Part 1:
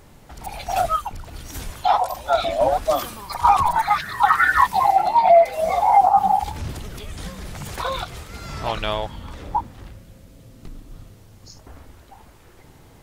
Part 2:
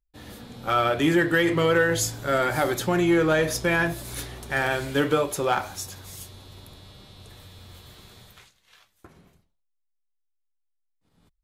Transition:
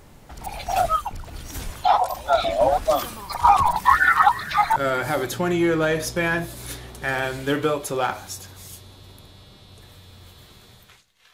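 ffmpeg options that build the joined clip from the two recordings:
ffmpeg -i cue0.wav -i cue1.wav -filter_complex "[0:a]apad=whole_dur=11.33,atrim=end=11.33,asplit=2[link_01][link_02];[link_01]atrim=end=3.762[link_03];[link_02]atrim=start=3.758:end=4.762,asetpts=PTS-STARTPTS,areverse[link_04];[1:a]atrim=start=2.238:end=8.81[link_05];[link_03][link_04]acrossfade=duration=0.004:curve1=hsin:curve2=hsin[link_06];[link_06][link_05]acrossfade=duration=0.004:curve1=hsin:curve2=hsin" out.wav

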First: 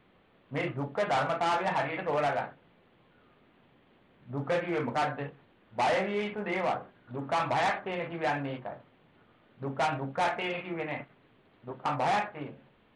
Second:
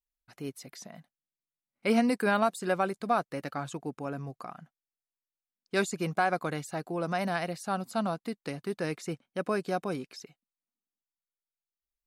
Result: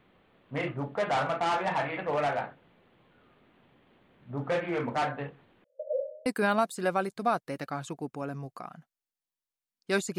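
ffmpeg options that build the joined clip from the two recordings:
ffmpeg -i cue0.wav -i cue1.wav -filter_complex "[0:a]asettb=1/sr,asplit=3[link_01][link_02][link_03];[link_01]atrim=end=5.644[link_04];[link_02]atrim=start=5.64:end=6.26,asetpts=PTS-STARTPTS,afade=type=in:duration=0.004:curve=qsin,afade=type=out:start_time=0.616:duration=0.004:curve=qsin,asuperpass=centerf=550:order=12:qfactor=4.1[link_05];[link_03]atrim=start=6.256[link_06];[link_04][link_05]acrossfade=duration=0.004:curve1=hsin:curve2=qsin[link_07];[link_07][link_06]acrossfade=duration=0.004:curve1=qsin:curve2=hsin,apad=whole_dur=10.18,atrim=end=10.18,atrim=end=6.262[link_08];[1:a]atrim=start=2.098:end=6.02[link_09];[link_08][link_09]acrossfade=duration=0.004:curve1=hsin:curve2=hsin" out.wav

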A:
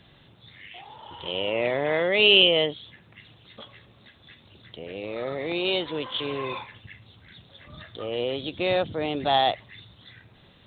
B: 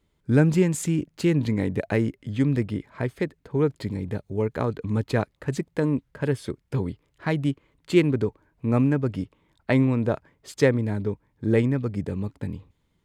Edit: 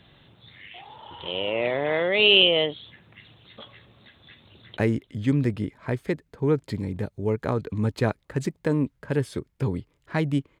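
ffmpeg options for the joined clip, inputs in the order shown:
ffmpeg -i cue0.wav -i cue1.wav -filter_complex "[0:a]apad=whole_dur=10.6,atrim=end=10.6,atrim=end=4.772[link_01];[1:a]atrim=start=1.888:end=7.72[link_02];[link_01][link_02]acrossfade=duration=0.004:curve1=hsin:curve2=hsin,asplit=2[link_03][link_04];[link_04]afade=type=in:start_time=4.47:duration=0.01,afade=type=out:start_time=4.77:duration=0.01,aecho=0:1:150|300|450|600|750|900|1050|1200|1350:0.177828|0.12448|0.0871357|0.060995|0.0426965|0.0298875|0.0209213|0.0146449|0.0102514[link_05];[link_03][link_05]amix=inputs=2:normalize=0" out.wav

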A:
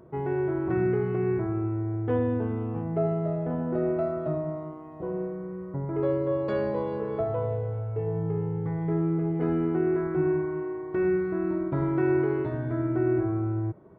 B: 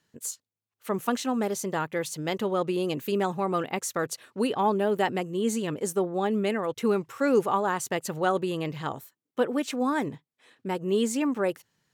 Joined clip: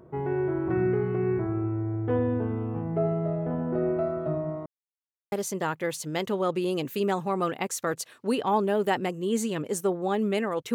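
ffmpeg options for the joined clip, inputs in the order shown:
ffmpeg -i cue0.wav -i cue1.wav -filter_complex "[0:a]apad=whole_dur=10.74,atrim=end=10.74,asplit=2[link_01][link_02];[link_01]atrim=end=4.66,asetpts=PTS-STARTPTS,afade=type=out:start_time=4.656:duration=0.004:curve=hsin[link_03];[link_02]atrim=start=4.66:end=5.32,asetpts=PTS-STARTPTS,volume=0[link_04];[1:a]atrim=start=1.44:end=6.86,asetpts=PTS-STARTPTS,afade=type=in:duration=0.004:curve=hsin[link_05];[link_03][link_04][link_05]concat=n=3:v=0:a=1" out.wav

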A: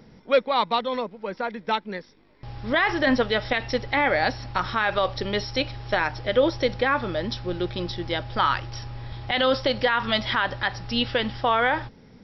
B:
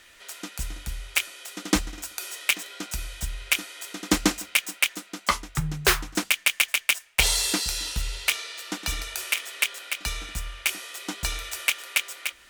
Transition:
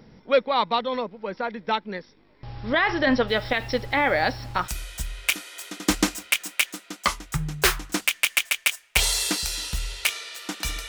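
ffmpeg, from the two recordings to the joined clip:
ffmpeg -i cue0.wav -i cue1.wav -filter_complex "[0:a]asplit=3[link_01][link_02][link_03];[link_01]afade=type=out:start_time=3.27:duration=0.02[link_04];[link_02]acrusher=bits=7:mix=0:aa=0.5,afade=type=in:start_time=3.27:duration=0.02,afade=type=out:start_time=4.69:duration=0.02[link_05];[link_03]afade=type=in:start_time=4.69:duration=0.02[link_06];[link_04][link_05][link_06]amix=inputs=3:normalize=0,apad=whole_dur=10.88,atrim=end=10.88,atrim=end=4.69,asetpts=PTS-STARTPTS[link_07];[1:a]atrim=start=2.84:end=9.11,asetpts=PTS-STARTPTS[link_08];[link_07][link_08]acrossfade=duration=0.08:curve1=tri:curve2=tri" out.wav

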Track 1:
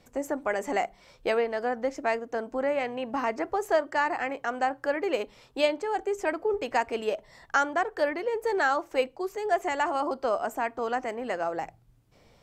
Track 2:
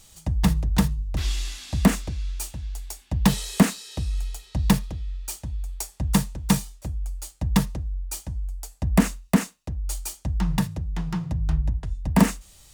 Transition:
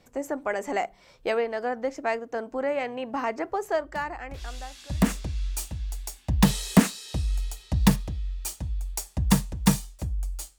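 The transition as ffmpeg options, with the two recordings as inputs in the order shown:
ffmpeg -i cue0.wav -i cue1.wav -filter_complex "[0:a]apad=whole_dur=10.58,atrim=end=10.58,atrim=end=5.44,asetpts=PTS-STARTPTS[link_01];[1:a]atrim=start=0.35:end=7.41,asetpts=PTS-STARTPTS[link_02];[link_01][link_02]acrossfade=duration=1.92:curve1=qua:curve2=qua" out.wav

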